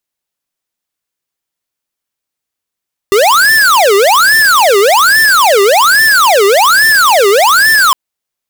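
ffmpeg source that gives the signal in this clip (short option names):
-f lavfi -i "aevalsrc='0.447*(2*lt(mod((1086*t-694/(2*PI*1.2)*sin(2*PI*1.2*t)),1),0.5)-1)':d=4.81:s=44100"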